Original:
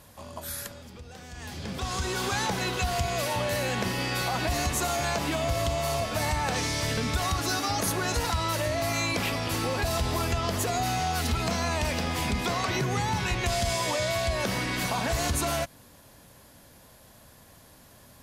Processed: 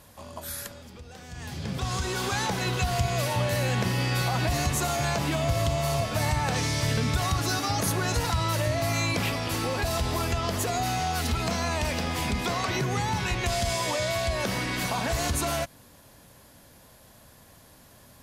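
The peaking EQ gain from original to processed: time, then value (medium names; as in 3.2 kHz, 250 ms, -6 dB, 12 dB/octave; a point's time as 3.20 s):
peaking EQ 130 Hz 0.64 oct
-1 dB
from 1.29 s +10 dB
from 1.97 s +3 dB
from 2.66 s +9 dB
from 9.31 s +0.5 dB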